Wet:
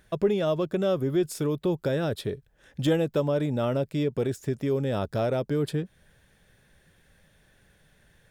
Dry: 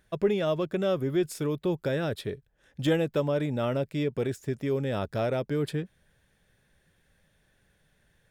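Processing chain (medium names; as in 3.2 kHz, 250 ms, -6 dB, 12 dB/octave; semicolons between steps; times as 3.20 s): dynamic bell 2.1 kHz, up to -5 dB, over -50 dBFS, Q 1.4; in parallel at +0.5 dB: compression, threshold -38 dBFS, peak gain reduction 17.5 dB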